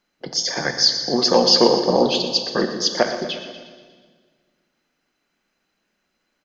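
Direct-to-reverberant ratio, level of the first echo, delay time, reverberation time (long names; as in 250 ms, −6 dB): 5.5 dB, −12.5 dB, 120 ms, 1.6 s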